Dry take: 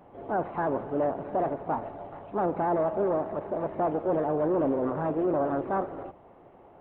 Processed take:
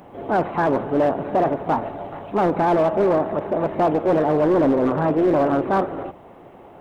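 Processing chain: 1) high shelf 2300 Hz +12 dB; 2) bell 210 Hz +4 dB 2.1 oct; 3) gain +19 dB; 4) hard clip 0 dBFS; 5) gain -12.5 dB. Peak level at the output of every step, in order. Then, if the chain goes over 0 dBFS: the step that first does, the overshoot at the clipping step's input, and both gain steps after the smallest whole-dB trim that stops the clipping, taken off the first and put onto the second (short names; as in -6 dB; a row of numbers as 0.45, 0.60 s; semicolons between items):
-16.0, -13.5, +5.5, 0.0, -12.5 dBFS; step 3, 5.5 dB; step 3 +13 dB, step 5 -6.5 dB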